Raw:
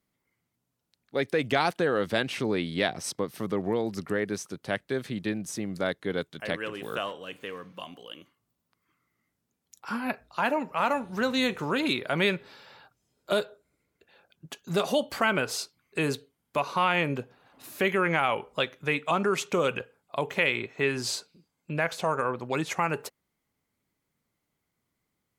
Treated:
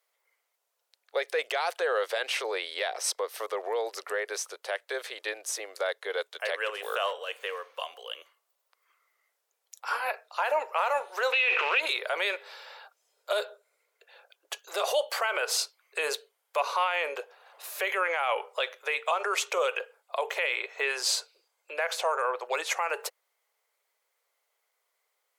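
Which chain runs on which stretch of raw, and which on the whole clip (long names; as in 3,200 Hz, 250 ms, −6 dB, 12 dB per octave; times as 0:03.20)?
0:11.32–0:11.80: transient designer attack −3 dB, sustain +10 dB + log-companded quantiser 4 bits + low-pass with resonance 2,600 Hz, resonance Q 9.7
whole clip: brickwall limiter −20.5 dBFS; Butterworth high-pass 460 Hz 48 dB per octave; level +5 dB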